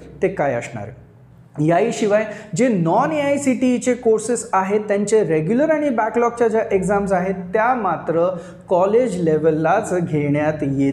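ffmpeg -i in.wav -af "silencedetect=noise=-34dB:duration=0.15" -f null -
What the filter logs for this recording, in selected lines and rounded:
silence_start: 1.01
silence_end: 1.56 | silence_duration: 0.54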